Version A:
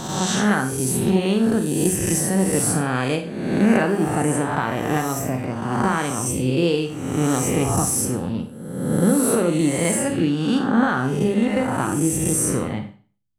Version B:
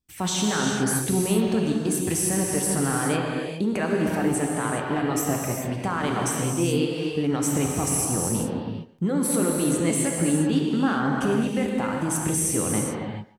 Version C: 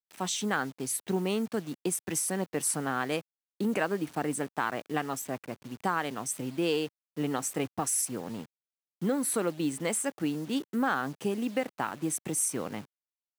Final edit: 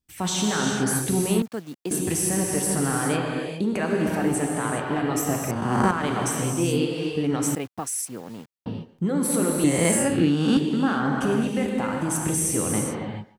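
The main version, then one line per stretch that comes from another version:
B
1.42–1.91 from C
5.51–5.91 from A
7.55–8.66 from C
9.64–10.57 from A

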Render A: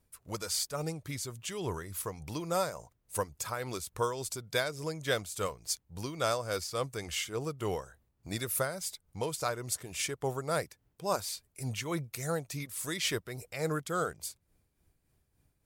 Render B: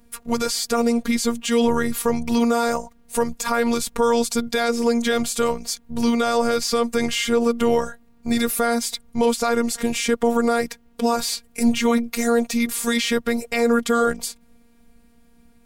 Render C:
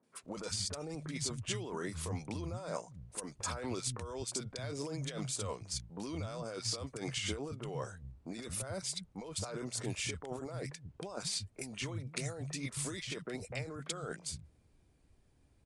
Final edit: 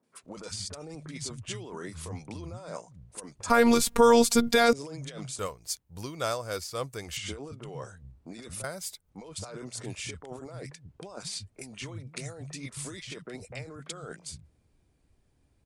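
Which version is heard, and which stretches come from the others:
C
3.5–4.73 from B
5.39–7.17 from A
8.64–9.1 from A

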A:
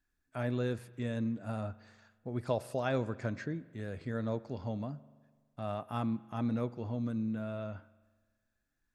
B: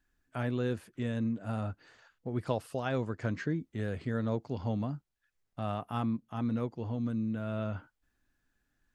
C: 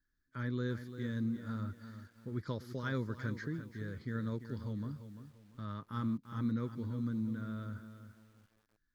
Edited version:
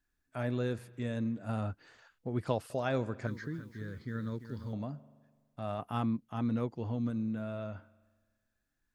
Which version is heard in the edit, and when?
A
1.49–2.7 from B
3.27–4.73 from C
5.79–7.1 from B

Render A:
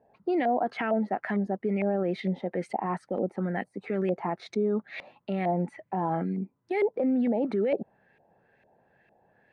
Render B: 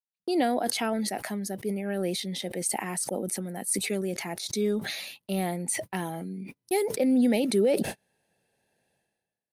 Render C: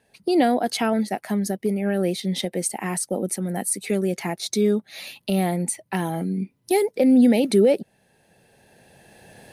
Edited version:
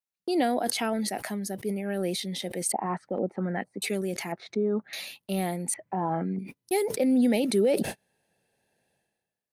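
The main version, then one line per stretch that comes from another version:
B
2.72–3.82 from A
4.32–4.93 from A
5.74–6.39 from A
not used: C

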